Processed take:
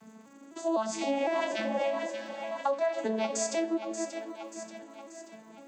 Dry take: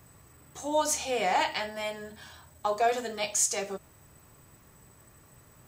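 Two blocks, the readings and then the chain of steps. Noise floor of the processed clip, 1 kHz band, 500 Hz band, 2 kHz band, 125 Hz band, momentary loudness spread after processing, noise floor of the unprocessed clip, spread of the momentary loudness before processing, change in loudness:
-53 dBFS, -4.0 dB, +1.5 dB, -3.5 dB, n/a, 17 LU, -58 dBFS, 16 LU, -3.0 dB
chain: arpeggiated vocoder major triad, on A3, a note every 0.253 s; spectral repair 1.42–1.81, 230–1200 Hz both; on a send: split-band echo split 610 Hz, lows 0.274 s, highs 0.583 s, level -11.5 dB; on the sum: crackle 200/s -63 dBFS; compressor 5:1, threshold -33 dBFS, peak gain reduction 11 dB; gain +6.5 dB

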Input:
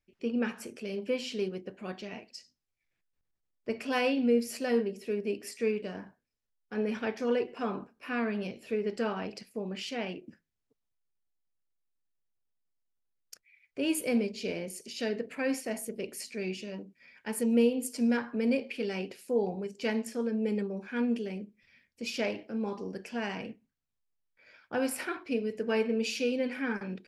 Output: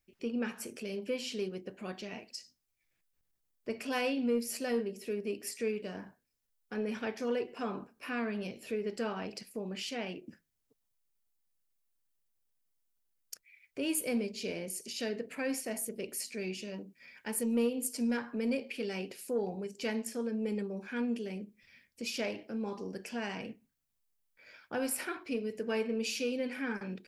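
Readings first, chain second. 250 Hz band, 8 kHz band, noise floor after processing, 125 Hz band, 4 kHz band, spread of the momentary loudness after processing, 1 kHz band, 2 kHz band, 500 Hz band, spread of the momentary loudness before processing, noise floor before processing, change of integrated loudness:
-4.0 dB, +2.5 dB, -80 dBFS, -3.5 dB, -1.5 dB, 11 LU, -3.5 dB, -3.0 dB, -4.0 dB, 12 LU, -83 dBFS, -3.5 dB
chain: high shelf 7200 Hz +10 dB; in parallel at +1.5 dB: compressor, threshold -43 dBFS, peak gain reduction 20.5 dB; on the sum: soft clip -14 dBFS, distortion -28 dB; gain -5.5 dB

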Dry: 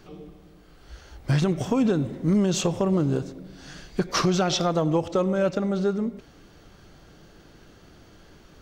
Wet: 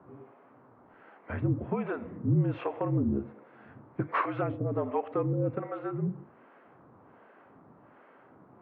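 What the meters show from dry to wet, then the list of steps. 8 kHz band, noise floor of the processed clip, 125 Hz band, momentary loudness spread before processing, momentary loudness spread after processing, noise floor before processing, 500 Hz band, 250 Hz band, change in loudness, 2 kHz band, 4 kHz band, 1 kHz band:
under -40 dB, -58 dBFS, -4.5 dB, 11 LU, 9 LU, -52 dBFS, -8.0 dB, -8.5 dB, -7.0 dB, -5.5 dB, under -25 dB, -4.0 dB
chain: notches 50/100/150/200/250/300/350/400 Hz; harmonic tremolo 1.3 Hz, depth 100%, crossover 490 Hz; mistuned SSB -52 Hz 180–2300 Hz; band noise 190–1200 Hz -60 dBFS

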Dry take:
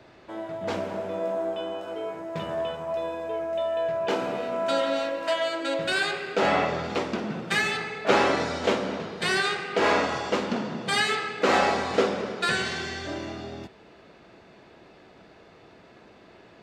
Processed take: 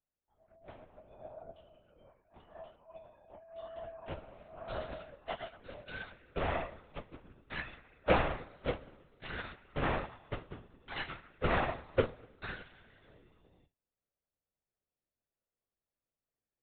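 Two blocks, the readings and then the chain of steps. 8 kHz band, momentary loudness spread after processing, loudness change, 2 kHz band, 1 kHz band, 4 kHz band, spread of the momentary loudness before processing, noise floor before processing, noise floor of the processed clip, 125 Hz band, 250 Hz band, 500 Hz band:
under -40 dB, 22 LU, -12.0 dB, -14.5 dB, -13.0 dB, -18.0 dB, 11 LU, -53 dBFS, under -85 dBFS, -4.5 dB, -13.5 dB, -13.5 dB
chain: air absorption 76 m; spectral noise reduction 19 dB; in parallel at -9 dB: Schmitt trigger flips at -17.5 dBFS; on the sum: LPC vocoder at 8 kHz whisper; upward expander 2.5:1, over -32 dBFS; gain -4.5 dB

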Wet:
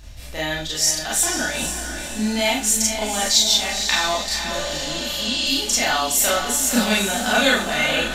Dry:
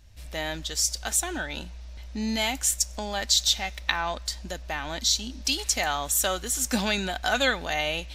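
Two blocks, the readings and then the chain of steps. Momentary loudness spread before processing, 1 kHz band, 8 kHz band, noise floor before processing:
10 LU, +6.0 dB, +7.0 dB, -41 dBFS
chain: spectral repair 4.54–5.49, 450–9500 Hz both; reverse; upward compressor, threshold -27 dBFS; reverse; diffused feedback echo 0.489 s, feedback 47%, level -7 dB; Schroeder reverb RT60 0.3 s, combs from 26 ms, DRR -5 dB

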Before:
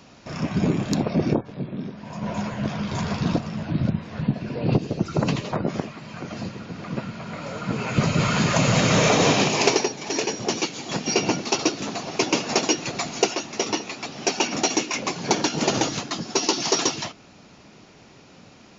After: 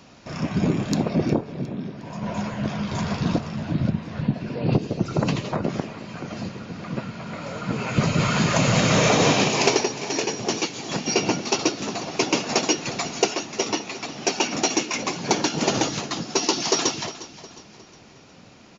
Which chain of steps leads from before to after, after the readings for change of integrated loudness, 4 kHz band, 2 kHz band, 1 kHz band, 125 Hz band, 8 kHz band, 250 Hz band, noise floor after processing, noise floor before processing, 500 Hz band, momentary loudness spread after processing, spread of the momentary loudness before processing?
0.0 dB, 0.0 dB, 0.0 dB, 0.0 dB, 0.0 dB, n/a, 0.0 dB, -48 dBFS, -50 dBFS, 0.0 dB, 14 LU, 14 LU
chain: de-hum 428 Hz, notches 36; on a send: feedback echo 0.359 s, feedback 44%, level -16 dB

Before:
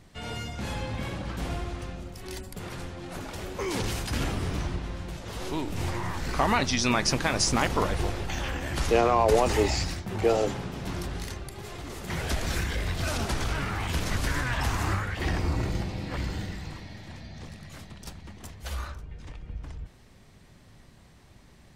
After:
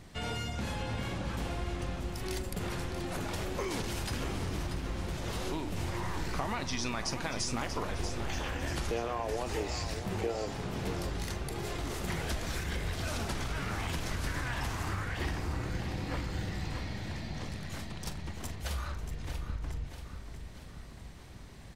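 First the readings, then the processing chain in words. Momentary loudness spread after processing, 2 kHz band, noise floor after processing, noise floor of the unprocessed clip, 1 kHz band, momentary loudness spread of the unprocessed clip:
7 LU, -6.0 dB, -47 dBFS, -54 dBFS, -8.0 dB, 19 LU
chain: compressor 6:1, threshold -35 dBFS, peak gain reduction 17 dB; doubler 43 ms -14 dB; feedback echo 0.636 s, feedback 53%, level -9 dB; gain +2.5 dB

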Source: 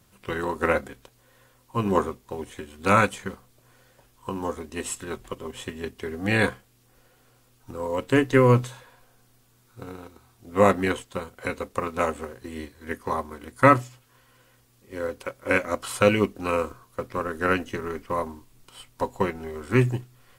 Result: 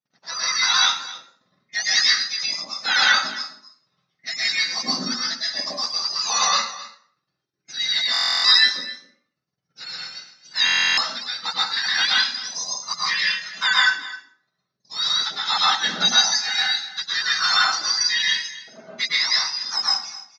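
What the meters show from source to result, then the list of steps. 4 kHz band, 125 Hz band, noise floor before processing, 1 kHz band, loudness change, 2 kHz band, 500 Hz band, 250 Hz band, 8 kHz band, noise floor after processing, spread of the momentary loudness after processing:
+24.5 dB, under -20 dB, -61 dBFS, +0.5 dB, +6.0 dB, +8.5 dB, -18.0 dB, -13.5 dB, +15.5 dB, -79 dBFS, 16 LU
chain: spectrum mirrored in octaves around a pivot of 1400 Hz; gate -52 dBFS, range -30 dB; reverb removal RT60 0.6 s; HPF 970 Hz 6 dB/oct; reverb removal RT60 1.7 s; high shelf 2800 Hz +10.5 dB; AGC gain up to 6.5 dB; in parallel at -1 dB: limiter -14.5 dBFS, peak gain reduction 13 dB; on the sum: rippled Chebyshev low-pass 6300 Hz, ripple 3 dB; on a send: echo 0.261 s -17 dB; on the sum: plate-style reverb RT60 0.55 s, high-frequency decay 0.75×, pre-delay 0.1 s, DRR -4.5 dB; stuck buffer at 8.12/10.65, samples 1024, times 13; gain -4.5 dB

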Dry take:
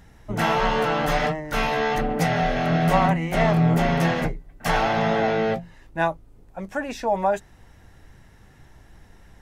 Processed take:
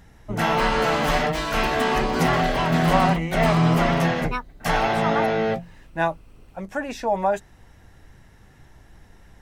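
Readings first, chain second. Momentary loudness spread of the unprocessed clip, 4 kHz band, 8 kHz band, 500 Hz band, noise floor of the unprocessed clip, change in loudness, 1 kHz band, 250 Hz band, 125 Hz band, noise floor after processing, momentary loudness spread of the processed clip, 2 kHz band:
11 LU, +3.0 dB, +2.5 dB, +0.5 dB, -51 dBFS, +1.0 dB, +1.0 dB, +0.5 dB, 0.0 dB, -51 dBFS, 11 LU, +1.0 dB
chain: echoes that change speed 0.326 s, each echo +7 st, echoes 2, each echo -6 dB

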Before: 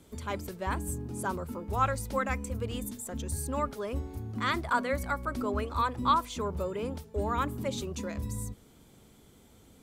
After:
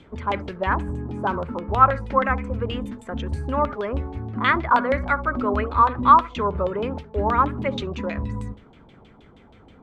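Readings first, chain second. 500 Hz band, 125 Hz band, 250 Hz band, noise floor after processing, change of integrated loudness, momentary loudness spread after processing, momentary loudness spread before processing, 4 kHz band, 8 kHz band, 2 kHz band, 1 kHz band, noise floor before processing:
+8.5 dB, +7.0 dB, +7.5 dB, -51 dBFS, +10.0 dB, 12 LU, 9 LU, +4.5 dB, under -15 dB, +9.5 dB, +12.0 dB, -58 dBFS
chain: flutter echo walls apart 11.7 m, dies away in 0.23 s; LFO low-pass saw down 6.3 Hz 730–3300 Hz; gain +7 dB

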